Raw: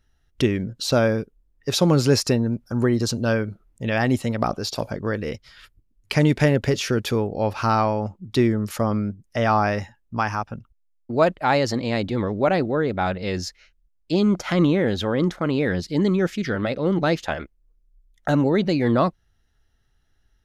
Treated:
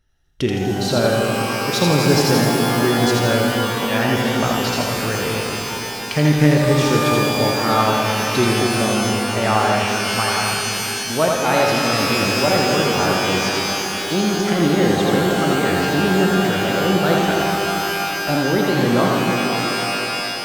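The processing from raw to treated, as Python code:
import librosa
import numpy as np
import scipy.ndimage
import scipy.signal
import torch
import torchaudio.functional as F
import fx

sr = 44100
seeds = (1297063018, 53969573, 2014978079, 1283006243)

y = fx.echo_split(x, sr, split_hz=470.0, low_ms=244, high_ms=82, feedback_pct=52, wet_db=-3)
y = fx.rev_shimmer(y, sr, seeds[0], rt60_s=3.4, semitones=12, shimmer_db=-2, drr_db=3.0)
y = y * 10.0 ** (-1.0 / 20.0)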